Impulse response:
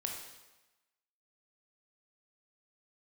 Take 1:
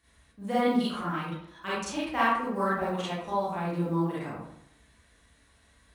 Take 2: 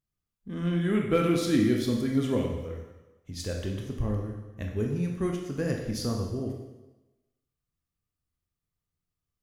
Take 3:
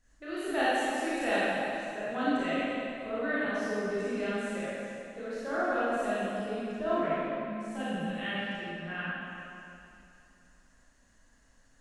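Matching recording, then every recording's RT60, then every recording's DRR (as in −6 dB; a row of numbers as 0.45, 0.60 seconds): 2; 0.75, 1.1, 2.8 seconds; −9.5, 0.5, −11.0 decibels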